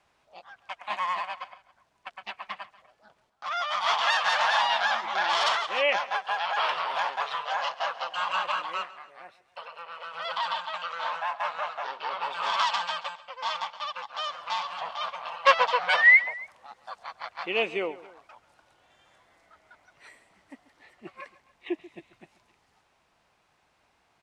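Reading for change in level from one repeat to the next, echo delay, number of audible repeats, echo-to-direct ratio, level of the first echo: -5.5 dB, 0.137 s, 2, -17.0 dB, -18.0 dB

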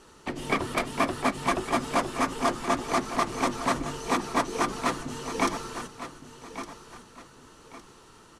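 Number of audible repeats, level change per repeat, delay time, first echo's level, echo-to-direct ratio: 2, -9.5 dB, 1.16 s, -12.0 dB, -11.5 dB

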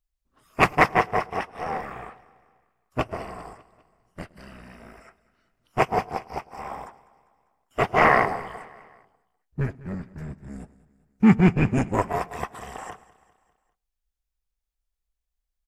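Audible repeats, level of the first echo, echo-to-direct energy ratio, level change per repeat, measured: 3, -20.0 dB, -18.5 dB, -5.5 dB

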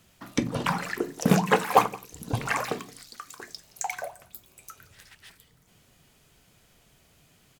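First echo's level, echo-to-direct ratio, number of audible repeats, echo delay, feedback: -23.5 dB, -23.5 dB, 1, 0.172 s, no steady repeat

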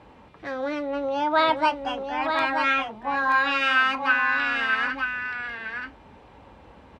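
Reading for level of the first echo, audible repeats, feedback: -6.0 dB, 1, no steady repeat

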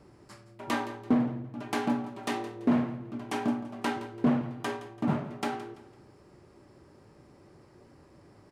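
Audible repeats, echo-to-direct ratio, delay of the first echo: 3, -15.0 dB, 0.168 s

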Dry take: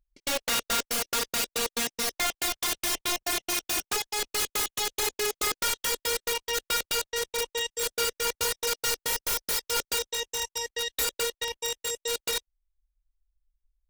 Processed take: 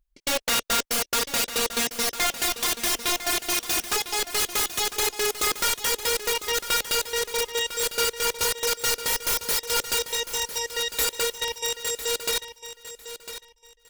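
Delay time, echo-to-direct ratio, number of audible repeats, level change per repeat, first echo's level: 1.002 s, -12.0 dB, 2, -13.0 dB, -12.0 dB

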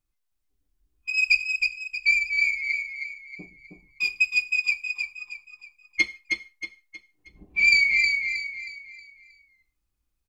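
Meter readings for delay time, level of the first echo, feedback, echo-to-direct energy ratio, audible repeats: 0.316 s, -4.5 dB, 38%, -4.0 dB, 4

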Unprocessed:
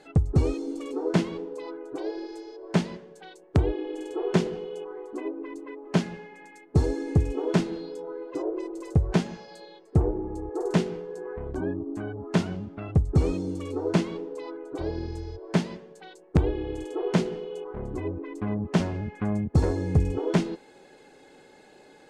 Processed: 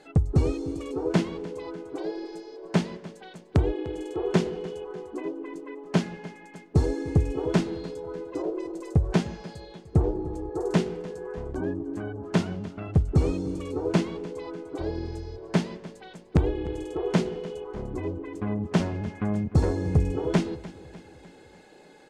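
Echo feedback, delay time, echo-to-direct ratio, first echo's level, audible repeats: 54%, 0.299 s, -16.5 dB, -18.0 dB, 4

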